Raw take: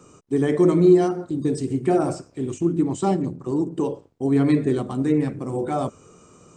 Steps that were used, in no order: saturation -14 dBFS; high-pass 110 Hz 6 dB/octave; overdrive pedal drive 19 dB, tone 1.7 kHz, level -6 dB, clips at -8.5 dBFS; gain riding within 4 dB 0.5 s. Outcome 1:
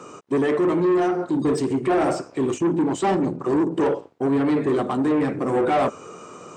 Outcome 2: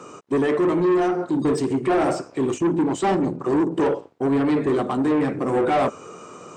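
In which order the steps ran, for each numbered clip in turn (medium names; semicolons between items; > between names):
gain riding > overdrive pedal > saturation > high-pass; gain riding > overdrive pedal > high-pass > saturation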